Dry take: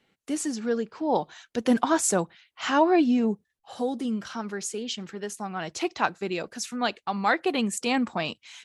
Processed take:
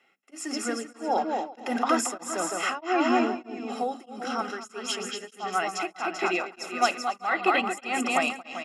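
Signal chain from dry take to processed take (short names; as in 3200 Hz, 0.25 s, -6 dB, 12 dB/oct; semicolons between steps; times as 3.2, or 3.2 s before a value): bell 160 Hz -13 dB 0.33 oct; notches 50/100/150/200/250 Hz; limiter -17 dBFS, peak gain reduction 9 dB; bouncing-ball echo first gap 0.23 s, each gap 0.7×, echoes 5; reverb RT60 0.30 s, pre-delay 3 ms, DRR 17 dB; beating tremolo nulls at 1.6 Hz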